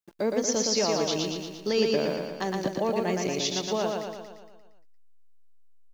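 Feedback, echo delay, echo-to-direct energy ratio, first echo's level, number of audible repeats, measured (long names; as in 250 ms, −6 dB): 57%, 116 ms, −1.5 dB, −3.0 dB, 7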